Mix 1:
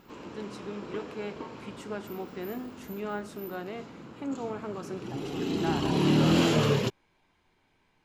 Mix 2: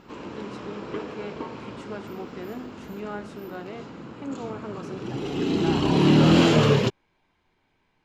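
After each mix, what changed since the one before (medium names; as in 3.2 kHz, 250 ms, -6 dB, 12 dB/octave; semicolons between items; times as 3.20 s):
background +6.0 dB; master: add distance through air 53 m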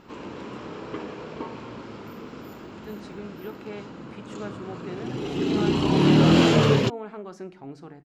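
speech: entry +2.50 s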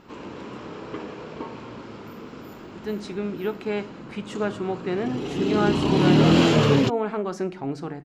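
speech +10.5 dB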